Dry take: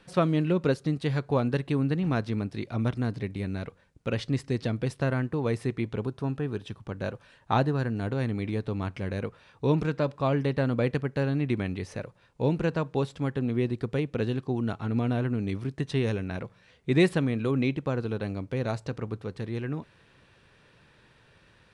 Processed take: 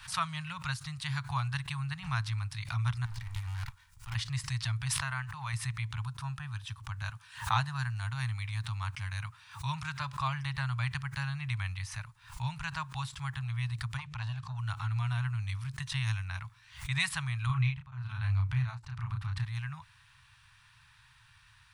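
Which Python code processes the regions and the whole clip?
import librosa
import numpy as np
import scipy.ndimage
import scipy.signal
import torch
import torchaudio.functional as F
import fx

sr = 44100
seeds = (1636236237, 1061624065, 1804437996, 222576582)

y = fx.chain(x, sr, fx.lower_of_two(delay_ms=2.1),
    fx.over_compress(threshold_db=-36.0, ratio=-1.0), at=(3.05, 4.15))
y = fx.chain(y, sr, fx.bass_treble(bass_db=-7, treble_db=-3),
    fx.pre_swell(db_per_s=72.0), at=(4.89, 5.53))
y = fx.chain(y, sr, fx.highpass(hz=83.0, slope=12),
    fx.high_shelf(hz=4500.0, db=3.0), at=(7.09, 10.01))
y = fx.chain(y, sr, fx.lowpass(hz=7300.0, slope=12),
    fx.hum_notches(base_hz=50, count=4),
    fx.transformer_sat(knee_hz=410.0), at=(13.97, 14.59))
y = fx.chain(y, sr, fx.bass_treble(bass_db=6, treble_db=-10),
    fx.doubler(ms=32.0, db=-2.5),
    fx.tremolo_abs(hz=1.1), at=(17.46, 19.45))
y = scipy.signal.sosfilt(scipy.signal.ellip(3, 1.0, 50, [120.0, 980.0], 'bandstop', fs=sr, output='sos'), y)
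y = fx.high_shelf(y, sr, hz=7700.0, db=10.0)
y = fx.pre_swell(y, sr, db_per_s=130.0)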